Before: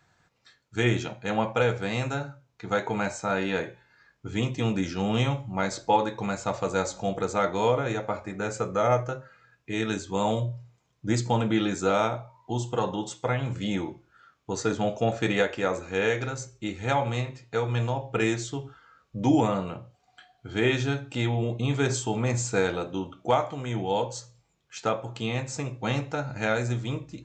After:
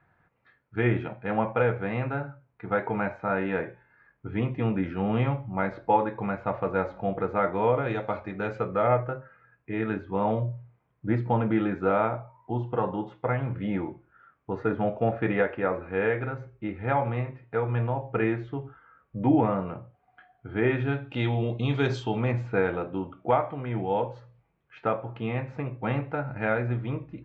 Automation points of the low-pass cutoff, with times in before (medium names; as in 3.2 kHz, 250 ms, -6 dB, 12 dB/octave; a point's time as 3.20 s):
low-pass 24 dB/octave
7.68 s 2.2 kHz
8.08 s 4 kHz
9.18 s 2.1 kHz
20.72 s 2.1 kHz
21.34 s 4 kHz
21.99 s 4 kHz
22.48 s 2.3 kHz